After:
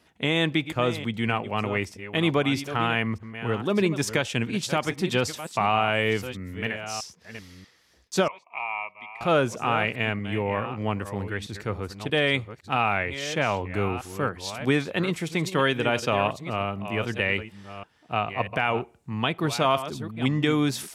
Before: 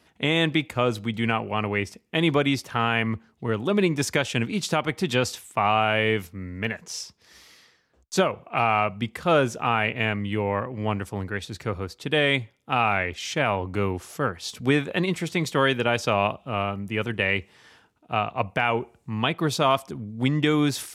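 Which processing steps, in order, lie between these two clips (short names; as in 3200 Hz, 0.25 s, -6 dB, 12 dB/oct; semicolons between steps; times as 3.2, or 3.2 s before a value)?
reverse delay 0.637 s, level -11.5 dB; 8.28–9.21 double band-pass 1500 Hz, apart 1.2 oct; gain -1.5 dB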